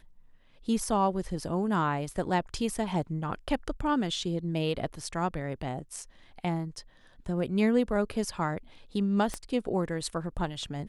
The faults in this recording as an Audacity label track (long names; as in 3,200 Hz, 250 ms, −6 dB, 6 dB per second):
9.340000	9.340000	click −19 dBFS